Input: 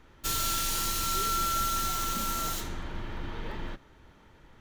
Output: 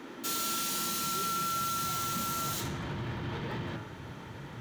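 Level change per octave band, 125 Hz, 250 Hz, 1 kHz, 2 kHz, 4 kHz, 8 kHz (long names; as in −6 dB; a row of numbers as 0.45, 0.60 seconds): +2.5, +2.5, −2.0, −1.0, −2.5, −2.5 decibels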